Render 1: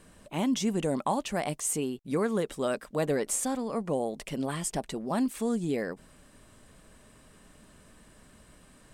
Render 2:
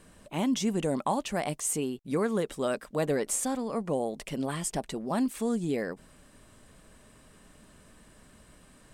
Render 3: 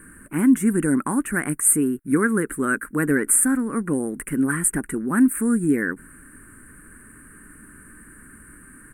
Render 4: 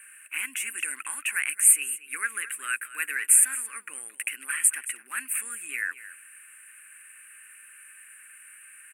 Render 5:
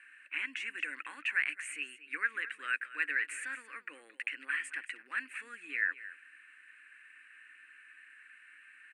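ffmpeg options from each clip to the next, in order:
ffmpeg -i in.wav -af anull out.wav
ffmpeg -i in.wav -af "firequalizer=gain_entry='entry(190,0);entry(290,7);entry(630,-18);entry(1500,12);entry(3400,-25);entry(5100,-27);entry(9200,12);entry(14000,6)':delay=0.05:min_phase=1,volume=7dB" out.wav
ffmpeg -i in.wav -af "highpass=frequency=2600:width_type=q:width=8.4,aecho=1:1:222:0.168" out.wav
ffmpeg -i in.wav -af "highpass=150,equalizer=frequency=300:width_type=q:width=4:gain=9,equalizer=frequency=520:width_type=q:width=4:gain=9,equalizer=frequency=1800:width_type=q:width=4:gain=6,equalizer=frequency=4200:width_type=q:width=4:gain=7,lowpass=frequency=5000:width=0.5412,lowpass=frequency=5000:width=1.3066,volume=-6dB" out.wav

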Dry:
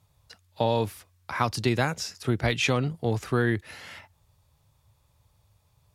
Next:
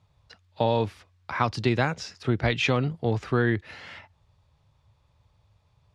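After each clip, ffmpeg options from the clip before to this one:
ffmpeg -i in.wav -af "lowpass=4300,volume=1dB" out.wav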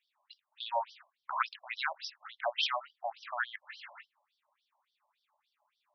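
ffmpeg -i in.wav -af "afftfilt=real='re*between(b*sr/1024,770*pow(4300/770,0.5+0.5*sin(2*PI*3.5*pts/sr))/1.41,770*pow(4300/770,0.5+0.5*sin(2*PI*3.5*pts/sr))*1.41)':imag='im*between(b*sr/1024,770*pow(4300/770,0.5+0.5*sin(2*PI*3.5*pts/sr))/1.41,770*pow(4300/770,0.5+0.5*sin(2*PI*3.5*pts/sr))*1.41)':win_size=1024:overlap=0.75" out.wav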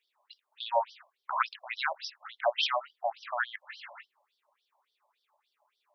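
ffmpeg -i in.wav -af "highpass=frequency=410:width_type=q:width=4.4,volume=2dB" out.wav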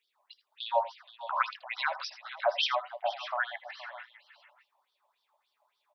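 ffmpeg -i in.wav -af "aecho=1:1:78|82|472|606|614:0.126|0.126|0.168|0.141|0.106" out.wav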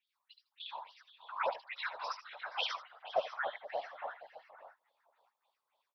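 ffmpeg -i in.wav -filter_complex "[0:a]acrossover=split=1100|4800[link_01][link_02][link_03];[link_03]adelay=70[link_04];[link_01]adelay=700[link_05];[link_05][link_02][link_04]amix=inputs=3:normalize=0,afftfilt=real='hypot(re,im)*cos(2*PI*random(0))':imag='hypot(re,im)*sin(2*PI*random(1))':win_size=512:overlap=0.75,volume=1dB" out.wav

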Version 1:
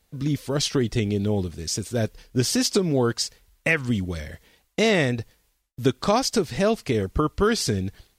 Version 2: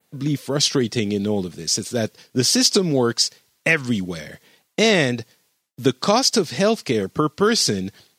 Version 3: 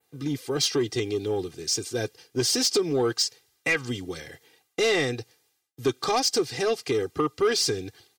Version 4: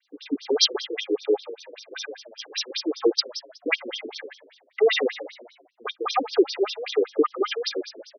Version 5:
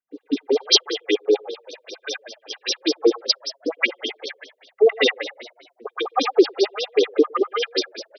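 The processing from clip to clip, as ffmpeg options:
ffmpeg -i in.wav -af "highpass=frequency=130:width=0.5412,highpass=frequency=130:width=1.3066,adynamicequalizer=threshold=0.00891:dfrequency=5100:dqfactor=1.1:tfrequency=5100:tqfactor=1.1:attack=5:release=100:ratio=0.375:range=3:mode=boostabove:tftype=bell,volume=3dB" out.wav
ffmpeg -i in.wav -af "aecho=1:1:2.5:0.83,asoftclip=type=tanh:threshold=-9dB,volume=-6.5dB" out.wav
ffmpeg -i in.wav -filter_complex "[0:a]asplit=5[link_01][link_02][link_03][link_04][link_05];[link_02]adelay=148,afreqshift=60,volume=-14.5dB[link_06];[link_03]adelay=296,afreqshift=120,volume=-21.4dB[link_07];[link_04]adelay=444,afreqshift=180,volume=-28.4dB[link_08];[link_05]adelay=592,afreqshift=240,volume=-35.3dB[link_09];[link_01][link_06][link_07][link_08][link_09]amix=inputs=5:normalize=0,afftfilt=real='re*between(b*sr/1024,350*pow(4500/350,0.5+0.5*sin(2*PI*5.1*pts/sr))/1.41,350*pow(4500/350,0.5+0.5*sin(2*PI*5.1*pts/sr))*1.41)':imag='im*between(b*sr/1024,350*pow(4500/350,0.5+0.5*sin(2*PI*5.1*pts/sr))/1.41,350*pow(4500/350,0.5+0.5*sin(2*PI*5.1*pts/sr))*1.41)':win_size=1024:overlap=0.75,volume=8dB" out.wav
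ffmpeg -i in.wav -filter_complex "[0:a]acrossover=split=950[link_01][link_02];[link_02]adelay=110[link_03];[link_01][link_03]amix=inputs=2:normalize=0,volume=4.5dB" out.wav

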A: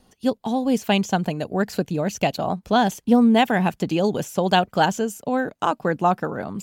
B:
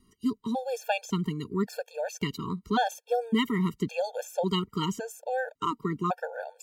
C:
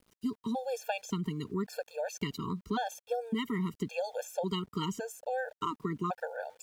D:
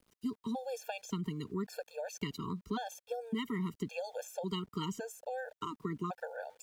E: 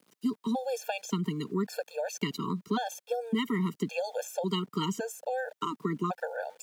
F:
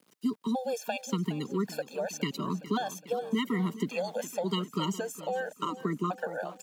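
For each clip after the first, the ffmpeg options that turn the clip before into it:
ffmpeg -i in.wav -af "afftfilt=real='re*gt(sin(2*PI*0.9*pts/sr)*(1-2*mod(floor(b*sr/1024/460),2)),0)':imag='im*gt(sin(2*PI*0.9*pts/sr)*(1-2*mod(floor(b*sr/1024/460),2)),0)':win_size=1024:overlap=0.75,volume=-4.5dB" out.wav
ffmpeg -i in.wav -af "acompressor=threshold=-27dB:ratio=6,aeval=exprs='val(0)*gte(abs(val(0)),0.00126)':channel_layout=same,volume=-2dB" out.wav
ffmpeg -i in.wav -filter_complex "[0:a]acrossover=split=360|3000[link_01][link_02][link_03];[link_02]acompressor=threshold=-34dB:ratio=6[link_04];[link_01][link_04][link_03]amix=inputs=3:normalize=0,volume=-3dB" out.wav
ffmpeg -i in.wav -af "highpass=frequency=150:width=0.5412,highpass=frequency=150:width=1.3066,volume=7dB" out.wav
ffmpeg -i in.wav -af "aecho=1:1:414|828|1242|1656|2070:0.168|0.094|0.0526|0.0295|0.0165" out.wav

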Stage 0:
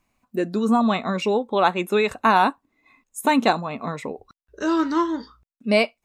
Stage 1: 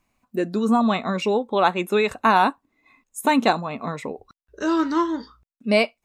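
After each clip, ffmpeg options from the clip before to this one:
ffmpeg -i in.wav -af anull out.wav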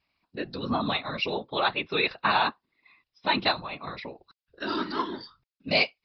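ffmpeg -i in.wav -af "crystalizer=i=10:c=0,afftfilt=real='hypot(re,im)*cos(2*PI*random(0))':imag='hypot(re,im)*sin(2*PI*random(1))':win_size=512:overlap=0.75,aresample=11025,aresample=44100,volume=-6dB" out.wav

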